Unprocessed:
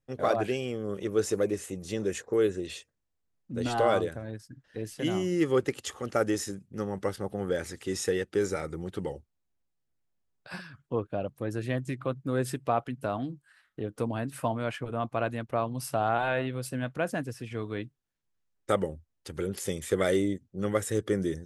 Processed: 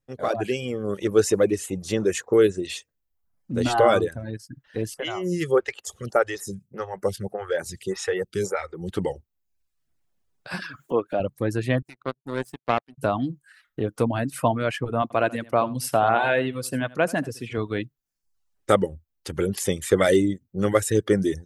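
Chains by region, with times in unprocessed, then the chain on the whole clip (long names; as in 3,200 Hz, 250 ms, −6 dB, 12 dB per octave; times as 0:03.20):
0:04.94–0:08.89: parametric band 280 Hz −15 dB 0.37 octaves + phaser with staggered stages 1.7 Hz
0:10.62–0:11.20: high-pass filter 260 Hz + upward compression, threshold −33 dBFS + downward expander −59 dBFS
0:11.82–0:12.98: high-pass filter 130 Hz + power curve on the samples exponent 2
0:15.02–0:17.58: high-pass filter 150 Hz 6 dB per octave + single-tap delay 82 ms −10 dB
whole clip: reverb reduction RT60 0.69 s; automatic gain control gain up to 8.5 dB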